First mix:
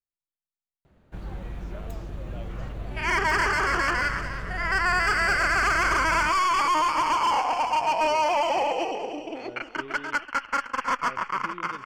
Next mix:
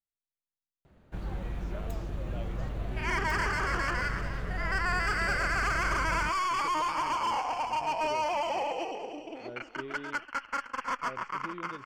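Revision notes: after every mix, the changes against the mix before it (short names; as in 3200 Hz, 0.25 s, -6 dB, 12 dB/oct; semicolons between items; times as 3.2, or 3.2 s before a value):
second sound -7.0 dB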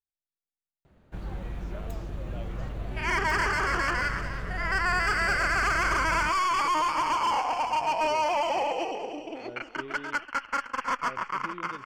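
second sound +4.0 dB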